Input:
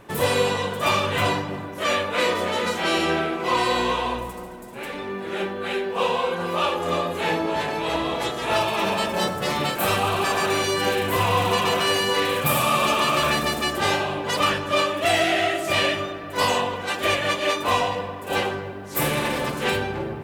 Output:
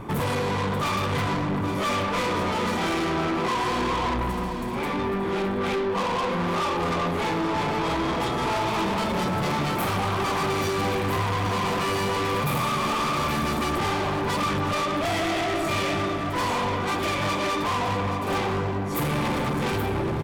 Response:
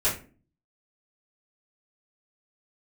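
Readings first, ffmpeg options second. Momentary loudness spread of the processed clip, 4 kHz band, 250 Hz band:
2 LU, −6.5 dB, +2.0 dB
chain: -af "tiltshelf=frequency=1400:gain=6,aecho=1:1:0.9:0.48,acompressor=threshold=-19dB:ratio=6,asoftclip=type=tanh:threshold=-29.5dB,aecho=1:1:825:0.299,volume=6dB"

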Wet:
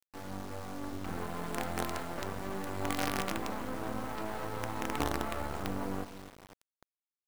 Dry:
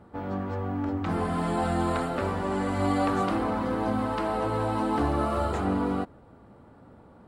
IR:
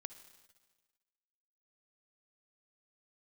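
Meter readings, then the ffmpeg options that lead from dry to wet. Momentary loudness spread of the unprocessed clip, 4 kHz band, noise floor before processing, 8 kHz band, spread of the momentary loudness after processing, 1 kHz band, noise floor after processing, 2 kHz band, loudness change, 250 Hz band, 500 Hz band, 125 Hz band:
6 LU, −1.0 dB, −53 dBFS, +3.0 dB, 9 LU, −9.5 dB, below −85 dBFS, −4.0 dB, −9.5 dB, −11.5 dB, −10.0 dB, −11.0 dB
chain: -filter_complex "[0:a]asplit=2[link_01][link_02];[link_02]aecho=0:1:253|506|759:0.237|0.0759|0.0243[link_03];[link_01][link_03]amix=inputs=2:normalize=0,acrusher=bits=4:dc=4:mix=0:aa=0.000001,volume=-6.5dB"

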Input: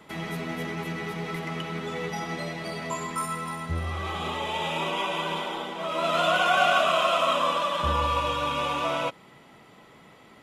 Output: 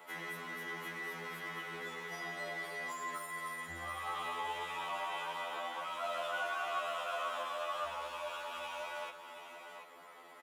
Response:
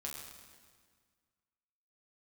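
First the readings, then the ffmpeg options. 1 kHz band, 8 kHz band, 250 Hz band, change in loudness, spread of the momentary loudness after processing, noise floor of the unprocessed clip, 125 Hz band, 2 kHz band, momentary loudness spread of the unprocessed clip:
−12.5 dB, −11.0 dB, −20.0 dB, −13.0 dB, 9 LU, −53 dBFS, −23.5 dB, −9.5 dB, 11 LU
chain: -filter_complex "[0:a]highpass=frequency=140:poles=1,aemphasis=mode=production:type=75kf,acrusher=bits=5:mode=log:mix=0:aa=0.000001,acompressor=threshold=-32dB:ratio=2.5,asoftclip=type=tanh:threshold=-29.5dB,acrossover=split=430 2000:gain=0.1 1 0.2[link_01][link_02][link_03];[link_01][link_02][link_03]amix=inputs=3:normalize=0,aecho=1:1:733:0.355,afftfilt=real='re*2*eq(mod(b,4),0)':imag='im*2*eq(mod(b,4),0)':win_size=2048:overlap=0.75,volume=2dB"

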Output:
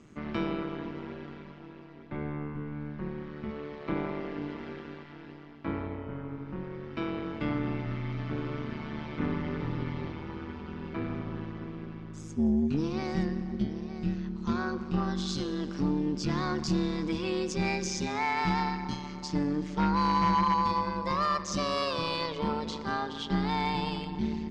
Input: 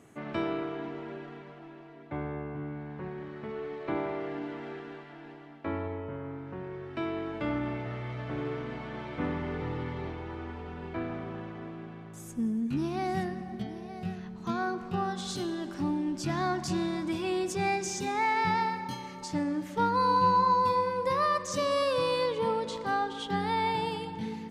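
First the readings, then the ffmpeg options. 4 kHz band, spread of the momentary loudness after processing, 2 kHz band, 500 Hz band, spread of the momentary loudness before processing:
+1.5 dB, 13 LU, −1.0 dB, −3.5 dB, 14 LU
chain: -af "highpass=100,equalizer=frequency=110:width_type=q:width=4:gain=7,equalizer=frequency=200:width_type=q:width=4:gain=9,equalizer=frequency=490:width_type=q:width=4:gain=-9,equalizer=frequency=740:width_type=q:width=4:gain=-8,equalizer=frequency=1700:width_type=q:width=4:gain=-3,equalizer=frequency=5000:width_type=q:width=4:gain=4,lowpass=frequency=6700:width=0.5412,lowpass=frequency=6700:width=1.3066,tremolo=f=150:d=0.75,aeval=exprs='0.168*sin(PI/2*1.58*val(0)/0.168)':channel_layout=same,volume=-3.5dB"

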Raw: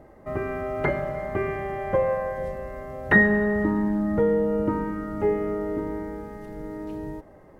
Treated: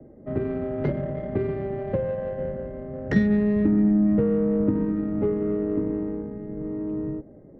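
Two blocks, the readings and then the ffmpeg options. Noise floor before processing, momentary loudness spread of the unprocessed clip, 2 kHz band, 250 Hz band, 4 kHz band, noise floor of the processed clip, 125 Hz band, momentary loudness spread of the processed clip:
−50 dBFS, 16 LU, −14.5 dB, +4.5 dB, can't be measured, −47 dBFS, +4.0 dB, 13 LU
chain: -filter_complex "[0:a]acrossover=split=260|270|800[link_01][link_02][link_03][link_04];[link_03]crystalizer=i=8.5:c=0[link_05];[link_01][link_02][link_05][link_04]amix=inputs=4:normalize=0,acrossover=split=180[link_06][link_07];[link_07]acompressor=threshold=-26dB:ratio=4[link_08];[link_06][link_08]amix=inputs=2:normalize=0,equalizer=frequency=125:width_type=o:width=1:gain=7,equalizer=frequency=250:width_type=o:width=1:gain=10,equalizer=frequency=500:width_type=o:width=1:gain=5,equalizer=frequency=1000:width_type=o:width=1:gain=-9,equalizer=frequency=2000:width_type=o:width=1:gain=5,adynamicsmooth=sensitivity=0.5:basefreq=860,volume=-3dB"

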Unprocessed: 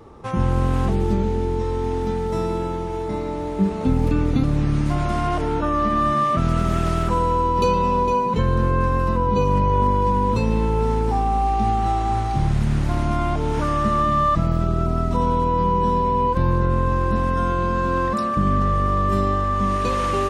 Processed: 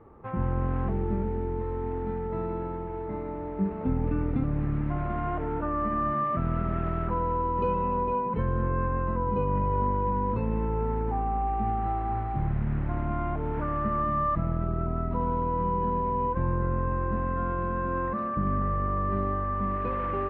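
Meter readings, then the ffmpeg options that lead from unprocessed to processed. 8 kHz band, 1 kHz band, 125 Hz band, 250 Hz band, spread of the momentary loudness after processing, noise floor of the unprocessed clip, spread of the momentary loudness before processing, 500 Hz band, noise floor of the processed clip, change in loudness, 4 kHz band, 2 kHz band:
below −35 dB, −8.0 dB, −8.0 dB, −8.0 dB, 5 LU, −26 dBFS, 5 LU, −8.0 dB, −34 dBFS, −8.0 dB, below −20 dB, −9.5 dB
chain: -af "lowpass=frequency=2100:width=0.5412,lowpass=frequency=2100:width=1.3066,volume=-8dB"

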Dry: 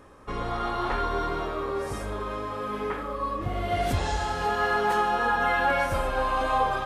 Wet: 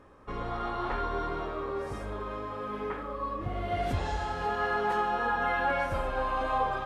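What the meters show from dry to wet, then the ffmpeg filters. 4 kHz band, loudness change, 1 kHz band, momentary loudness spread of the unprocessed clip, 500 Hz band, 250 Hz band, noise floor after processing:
−7.5 dB, −4.5 dB, −4.5 dB, 9 LU, −4.0 dB, −4.0 dB, −38 dBFS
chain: -af "highshelf=frequency=5300:gain=-11.5,volume=-4dB"

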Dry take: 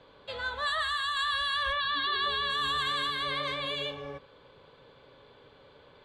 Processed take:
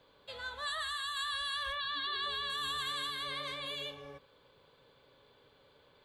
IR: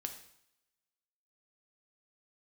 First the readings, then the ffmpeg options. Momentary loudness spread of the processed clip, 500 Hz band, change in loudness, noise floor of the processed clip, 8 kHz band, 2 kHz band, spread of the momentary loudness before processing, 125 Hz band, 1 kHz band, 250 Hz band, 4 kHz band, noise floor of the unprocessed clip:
9 LU, −9.0 dB, −6.5 dB, −65 dBFS, +0.5 dB, −7.5 dB, 8 LU, −9.0 dB, −8.5 dB, −9.0 dB, −5.5 dB, −57 dBFS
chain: -af "aemphasis=mode=production:type=50fm,volume=-8.5dB"

